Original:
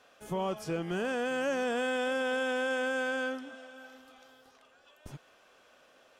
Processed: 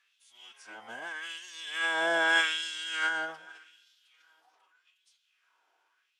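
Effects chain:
source passing by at 0:02.42, 8 m/s, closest 3.2 metres
auto-filter high-pass sine 0.83 Hz 800–3,900 Hz
phase-vocoder pitch shift with formants kept −8 semitones
level +6.5 dB

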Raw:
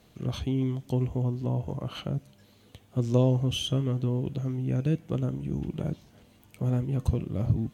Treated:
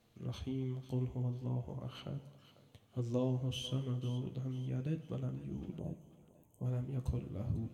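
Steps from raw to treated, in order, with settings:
flanger 0.37 Hz, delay 8.3 ms, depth 9.8 ms, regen −40%
time-frequency box erased 0:05.79–0:06.65, 1,100–6,100 Hz
on a send: feedback echo with a high-pass in the loop 496 ms, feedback 44%, high-pass 640 Hz, level −14 dB
on the sum: dense smooth reverb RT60 1.2 s, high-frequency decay 0.9×, DRR 12.5 dB
level −7.5 dB

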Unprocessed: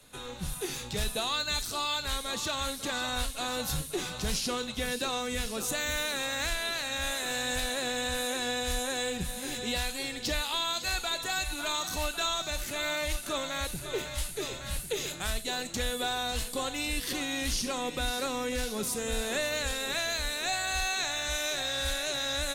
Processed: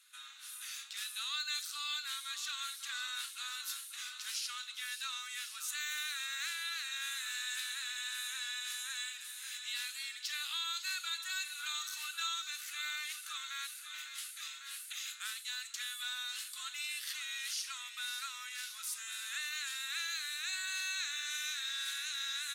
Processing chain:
elliptic high-pass filter 1,300 Hz, stop band 70 dB
level −5.5 dB

